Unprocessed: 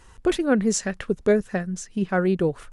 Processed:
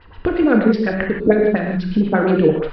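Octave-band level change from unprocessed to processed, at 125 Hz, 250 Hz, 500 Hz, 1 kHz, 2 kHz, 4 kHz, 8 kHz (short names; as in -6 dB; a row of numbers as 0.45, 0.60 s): +6.5 dB, +7.5 dB, +6.5 dB, +7.0 dB, +7.0 dB, -0.5 dB, under -30 dB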